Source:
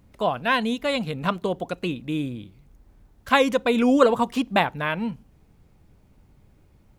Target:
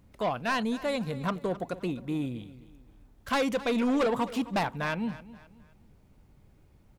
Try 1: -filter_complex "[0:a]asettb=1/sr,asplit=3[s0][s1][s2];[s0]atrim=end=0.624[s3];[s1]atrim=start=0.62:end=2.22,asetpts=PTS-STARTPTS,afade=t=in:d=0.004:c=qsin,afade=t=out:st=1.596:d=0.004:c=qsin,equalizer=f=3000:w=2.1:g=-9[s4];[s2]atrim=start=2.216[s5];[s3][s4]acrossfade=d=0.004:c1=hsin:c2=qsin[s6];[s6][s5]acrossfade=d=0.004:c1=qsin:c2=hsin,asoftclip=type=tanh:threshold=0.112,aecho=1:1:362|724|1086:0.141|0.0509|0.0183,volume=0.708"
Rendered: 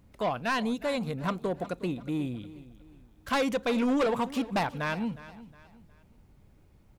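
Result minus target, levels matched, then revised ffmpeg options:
echo 99 ms late
-filter_complex "[0:a]asettb=1/sr,asplit=3[s0][s1][s2];[s0]atrim=end=0.624[s3];[s1]atrim=start=0.62:end=2.22,asetpts=PTS-STARTPTS,afade=t=in:d=0.004:c=qsin,afade=t=out:st=1.596:d=0.004:c=qsin,equalizer=f=3000:w=2.1:g=-9[s4];[s2]atrim=start=2.216[s5];[s3][s4]acrossfade=d=0.004:c1=hsin:c2=qsin[s6];[s6][s5]acrossfade=d=0.004:c1=qsin:c2=hsin,asoftclip=type=tanh:threshold=0.112,aecho=1:1:263|526|789:0.141|0.0509|0.0183,volume=0.708"

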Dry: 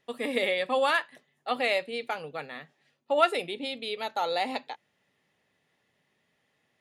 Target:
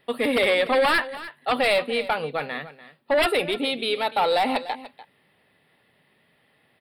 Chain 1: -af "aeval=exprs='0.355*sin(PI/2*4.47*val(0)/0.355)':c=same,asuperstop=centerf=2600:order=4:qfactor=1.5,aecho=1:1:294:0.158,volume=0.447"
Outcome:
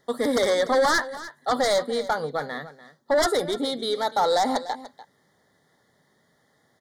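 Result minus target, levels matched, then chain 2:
8 kHz band +9.5 dB
-af "aeval=exprs='0.355*sin(PI/2*4.47*val(0)/0.355)':c=same,asuperstop=centerf=6400:order=4:qfactor=1.5,aecho=1:1:294:0.158,volume=0.447"

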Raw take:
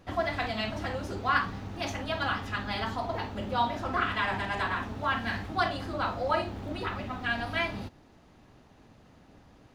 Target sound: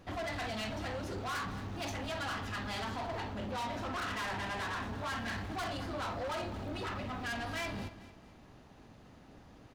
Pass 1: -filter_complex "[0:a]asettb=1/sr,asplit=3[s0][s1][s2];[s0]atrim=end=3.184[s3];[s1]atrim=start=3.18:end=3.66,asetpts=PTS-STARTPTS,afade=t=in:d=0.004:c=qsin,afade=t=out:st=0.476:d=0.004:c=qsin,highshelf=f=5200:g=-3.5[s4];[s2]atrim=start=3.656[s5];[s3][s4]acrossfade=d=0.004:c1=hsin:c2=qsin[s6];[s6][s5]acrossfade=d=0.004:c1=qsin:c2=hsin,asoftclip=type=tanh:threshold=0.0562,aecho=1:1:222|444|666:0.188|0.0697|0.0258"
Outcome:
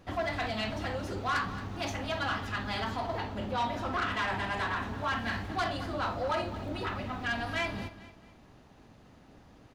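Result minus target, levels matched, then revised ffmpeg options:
saturation: distortion -7 dB
-filter_complex "[0:a]asettb=1/sr,asplit=3[s0][s1][s2];[s0]atrim=end=3.184[s3];[s1]atrim=start=3.18:end=3.66,asetpts=PTS-STARTPTS,afade=t=in:d=0.004:c=qsin,afade=t=out:st=0.476:d=0.004:c=qsin,highshelf=f=5200:g=-3.5[s4];[s2]atrim=start=3.656[s5];[s3][s4]acrossfade=d=0.004:c1=hsin:c2=qsin[s6];[s6][s5]acrossfade=d=0.004:c1=qsin:c2=hsin,asoftclip=type=tanh:threshold=0.0178,aecho=1:1:222|444|666:0.188|0.0697|0.0258"

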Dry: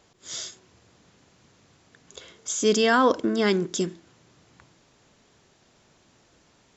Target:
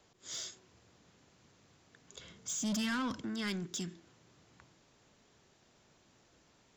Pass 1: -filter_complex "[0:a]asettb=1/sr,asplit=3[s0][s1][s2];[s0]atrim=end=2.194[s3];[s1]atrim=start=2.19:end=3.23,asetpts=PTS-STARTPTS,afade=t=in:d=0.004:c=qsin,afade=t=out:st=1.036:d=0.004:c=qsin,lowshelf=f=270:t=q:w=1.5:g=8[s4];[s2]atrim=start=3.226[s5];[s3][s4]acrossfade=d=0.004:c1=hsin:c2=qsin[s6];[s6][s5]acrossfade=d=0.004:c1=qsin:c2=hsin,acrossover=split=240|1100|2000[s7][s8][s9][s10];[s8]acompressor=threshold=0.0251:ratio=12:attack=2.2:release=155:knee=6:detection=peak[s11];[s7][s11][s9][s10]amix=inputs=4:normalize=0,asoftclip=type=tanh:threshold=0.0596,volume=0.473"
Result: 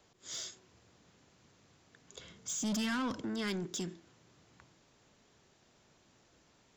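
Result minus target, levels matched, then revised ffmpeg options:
compression: peak gain reduction -11 dB
-filter_complex "[0:a]asettb=1/sr,asplit=3[s0][s1][s2];[s0]atrim=end=2.194[s3];[s1]atrim=start=2.19:end=3.23,asetpts=PTS-STARTPTS,afade=t=in:d=0.004:c=qsin,afade=t=out:st=1.036:d=0.004:c=qsin,lowshelf=f=270:t=q:w=1.5:g=8[s4];[s2]atrim=start=3.226[s5];[s3][s4]acrossfade=d=0.004:c1=hsin:c2=qsin[s6];[s6][s5]acrossfade=d=0.004:c1=qsin:c2=hsin,acrossover=split=240|1100|2000[s7][s8][s9][s10];[s8]acompressor=threshold=0.00631:ratio=12:attack=2.2:release=155:knee=6:detection=peak[s11];[s7][s11][s9][s10]amix=inputs=4:normalize=0,asoftclip=type=tanh:threshold=0.0596,volume=0.473"

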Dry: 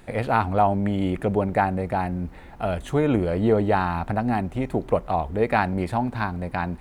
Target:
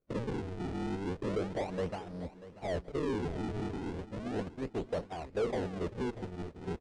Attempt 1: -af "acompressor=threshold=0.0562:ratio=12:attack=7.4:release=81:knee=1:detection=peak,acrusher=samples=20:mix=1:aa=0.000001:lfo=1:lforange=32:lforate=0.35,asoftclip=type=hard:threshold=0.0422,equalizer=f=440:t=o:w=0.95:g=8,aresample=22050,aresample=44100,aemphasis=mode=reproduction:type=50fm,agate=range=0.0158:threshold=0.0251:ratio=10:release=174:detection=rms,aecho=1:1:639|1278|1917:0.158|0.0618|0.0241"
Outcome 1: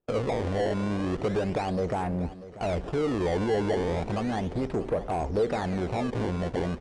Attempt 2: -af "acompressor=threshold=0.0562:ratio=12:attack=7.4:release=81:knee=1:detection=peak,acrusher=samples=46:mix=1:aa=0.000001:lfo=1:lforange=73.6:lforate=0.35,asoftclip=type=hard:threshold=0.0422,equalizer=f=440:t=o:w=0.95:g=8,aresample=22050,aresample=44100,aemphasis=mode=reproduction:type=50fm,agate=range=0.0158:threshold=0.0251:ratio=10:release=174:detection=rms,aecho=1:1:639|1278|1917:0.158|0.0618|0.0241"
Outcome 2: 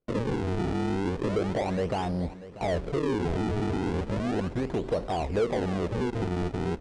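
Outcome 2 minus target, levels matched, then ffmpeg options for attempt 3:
hard clipper: distortion -5 dB
-af "acompressor=threshold=0.0562:ratio=12:attack=7.4:release=81:knee=1:detection=peak,acrusher=samples=46:mix=1:aa=0.000001:lfo=1:lforange=73.6:lforate=0.35,asoftclip=type=hard:threshold=0.0178,equalizer=f=440:t=o:w=0.95:g=8,aresample=22050,aresample=44100,aemphasis=mode=reproduction:type=50fm,agate=range=0.0158:threshold=0.0251:ratio=10:release=174:detection=rms,aecho=1:1:639|1278|1917:0.158|0.0618|0.0241"

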